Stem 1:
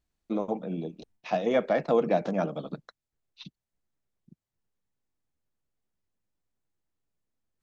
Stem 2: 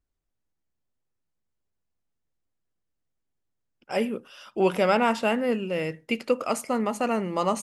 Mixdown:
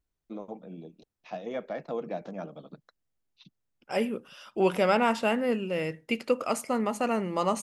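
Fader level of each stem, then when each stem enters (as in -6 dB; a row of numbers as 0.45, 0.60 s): -10.0, -2.0 dB; 0.00, 0.00 s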